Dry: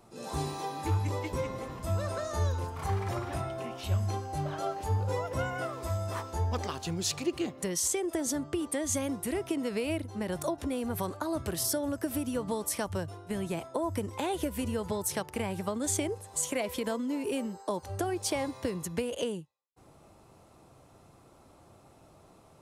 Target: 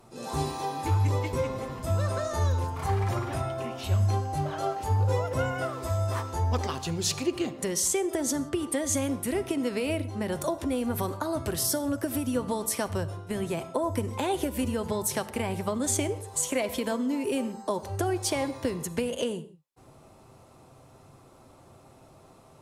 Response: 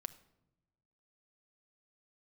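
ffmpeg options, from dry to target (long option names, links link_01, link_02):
-filter_complex "[1:a]atrim=start_sample=2205,atrim=end_sample=6174,asetrate=33075,aresample=44100[link_01];[0:a][link_01]afir=irnorm=-1:irlink=0,volume=5dB"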